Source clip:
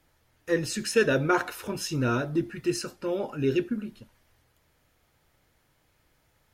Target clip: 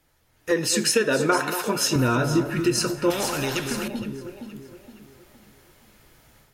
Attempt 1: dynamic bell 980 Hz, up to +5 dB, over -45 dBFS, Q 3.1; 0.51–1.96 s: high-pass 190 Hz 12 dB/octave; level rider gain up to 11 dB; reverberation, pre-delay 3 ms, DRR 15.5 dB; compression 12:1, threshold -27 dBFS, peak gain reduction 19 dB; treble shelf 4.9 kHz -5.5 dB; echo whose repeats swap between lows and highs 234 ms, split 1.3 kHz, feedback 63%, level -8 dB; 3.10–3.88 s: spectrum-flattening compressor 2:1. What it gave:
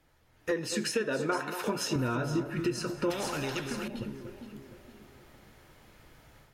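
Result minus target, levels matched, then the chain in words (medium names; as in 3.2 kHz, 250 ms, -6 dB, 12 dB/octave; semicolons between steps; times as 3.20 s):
compression: peak gain reduction +9 dB; 8 kHz band -4.0 dB
dynamic bell 980 Hz, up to +5 dB, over -45 dBFS, Q 3.1; 0.51–1.96 s: high-pass 190 Hz 12 dB/octave; level rider gain up to 11 dB; reverberation, pre-delay 3 ms, DRR 15.5 dB; compression 12:1, threshold -17 dBFS, peak gain reduction 9.5 dB; treble shelf 4.9 kHz +4 dB; echo whose repeats swap between lows and highs 234 ms, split 1.3 kHz, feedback 63%, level -8 dB; 3.10–3.88 s: spectrum-flattening compressor 2:1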